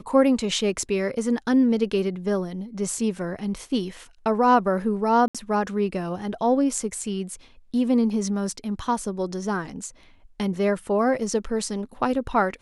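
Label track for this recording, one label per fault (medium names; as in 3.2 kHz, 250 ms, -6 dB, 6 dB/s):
5.280000	5.350000	dropout 66 ms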